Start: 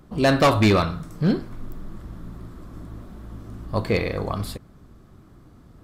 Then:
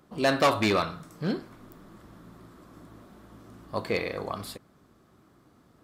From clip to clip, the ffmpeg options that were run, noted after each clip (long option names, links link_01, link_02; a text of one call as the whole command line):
ffmpeg -i in.wav -af "highpass=frequency=350:poles=1,volume=-3.5dB" out.wav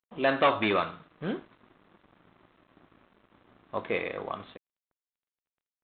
ffmpeg -i in.wav -af "lowshelf=frequency=160:gain=-11.5,aresample=8000,aeval=exprs='sgn(val(0))*max(abs(val(0))-0.00211,0)':channel_layout=same,aresample=44100" out.wav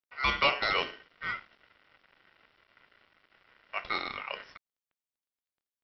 ffmpeg -i in.wav -af "aeval=exprs='val(0)*sin(2*PI*1700*n/s)':channel_layout=same" out.wav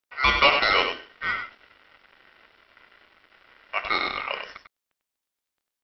ffmpeg -i in.wav -af "equalizer=frequency=140:width=1.7:gain=-6.5,aecho=1:1:97:0.422,volume=7.5dB" out.wav